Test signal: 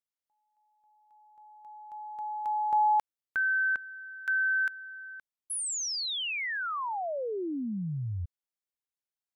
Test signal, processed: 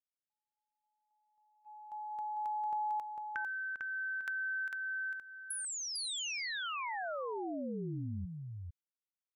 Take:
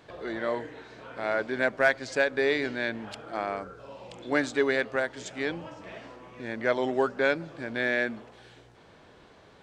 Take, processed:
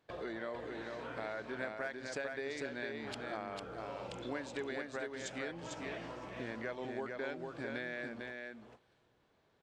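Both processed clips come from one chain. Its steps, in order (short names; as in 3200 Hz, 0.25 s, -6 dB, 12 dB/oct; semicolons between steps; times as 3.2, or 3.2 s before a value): gate -48 dBFS, range -19 dB; compressor 6:1, threshold -38 dBFS; echo 0.45 s -4 dB; gain -1 dB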